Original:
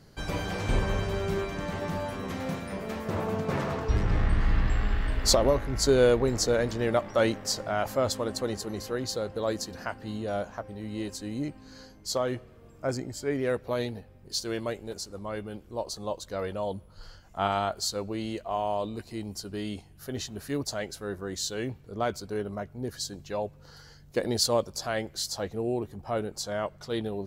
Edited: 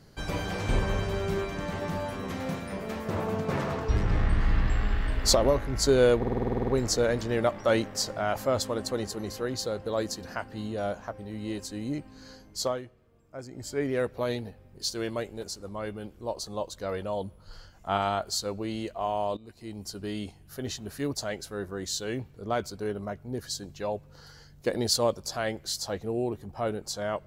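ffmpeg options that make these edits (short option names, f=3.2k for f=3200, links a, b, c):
-filter_complex "[0:a]asplit=14[a][b][c][d][e][f][g][h][i][j][k][l][m][n];[a]atrim=end=6.232[o];[b]atrim=start=6.178:end=6.232[p];[c]atrim=start=6.178:end=6.232[q];[d]atrim=start=6.178:end=6.232[r];[e]atrim=start=6.178:end=6.232[s];[f]atrim=start=6.178:end=6.232[t];[g]atrim=start=6.178:end=6.232[u];[h]atrim=start=6.178:end=6.232[v];[i]atrim=start=6.178:end=6.232[w];[j]atrim=start=6.178:end=6.232[x];[k]atrim=start=6.178:end=12.32,asetpts=PTS-STARTPTS,afade=t=out:st=6.002:d=0.14:silence=0.281838[y];[l]atrim=start=12.32:end=13,asetpts=PTS-STARTPTS,volume=-11dB[z];[m]atrim=start=13:end=18.87,asetpts=PTS-STARTPTS,afade=t=in:d=0.14:silence=0.281838,afade=t=out:st=5.866:d=0.004:c=hsin:silence=0.133352[aa];[n]atrim=start=18.87,asetpts=PTS-STARTPTS,afade=t=in:d=0.57:silence=0.133352[ab];[o][p]acrossfade=d=0.004:c1=hsin:c2=hsin[ac];[ac][q]acrossfade=d=0.004:c1=hsin:c2=hsin[ad];[ad][r]acrossfade=d=0.004:c1=hsin:c2=hsin[ae];[ae][s]acrossfade=d=0.004:c1=hsin:c2=hsin[af];[af][t]acrossfade=d=0.004:c1=hsin:c2=hsin[ag];[ag][u]acrossfade=d=0.004:c1=hsin:c2=hsin[ah];[ah][v]acrossfade=d=0.004:c1=hsin:c2=hsin[ai];[ai][w]acrossfade=d=0.004:c1=hsin:c2=hsin[aj];[aj][x]acrossfade=d=0.004:c1=hsin:c2=hsin[ak];[y][z][aa][ab]concat=n=4:v=0:a=1[al];[ak][al]acrossfade=d=0.004:c1=hsin:c2=hsin"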